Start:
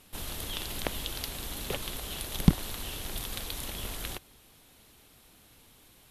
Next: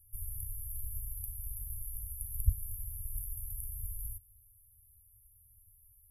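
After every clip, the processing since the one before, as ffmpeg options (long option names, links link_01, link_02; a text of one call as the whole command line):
ffmpeg -i in.wav -af "afftfilt=real='re*(1-between(b*sr/4096,110,10000))':imag='im*(1-between(b*sr/4096,110,10000))':win_size=4096:overlap=0.75" out.wav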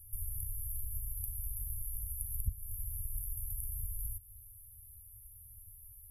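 ffmpeg -i in.wav -af "acompressor=threshold=-47dB:ratio=2.5,volume=8.5dB" out.wav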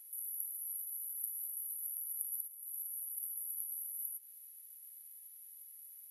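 ffmpeg -i in.wav -af "afftfilt=real='re*between(b*sr/4096,1600,12000)':imag='im*between(b*sr/4096,1600,12000)':win_size=4096:overlap=0.75,aexciter=amount=1.1:drive=3.7:freq=6400,volume=11dB" out.wav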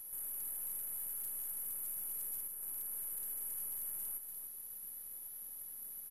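ffmpeg -i in.wav -af "aeval=exprs='(tanh(224*val(0)+0.2)-tanh(0.2))/224':channel_layout=same,aecho=1:1:294:0.398,volume=7dB" out.wav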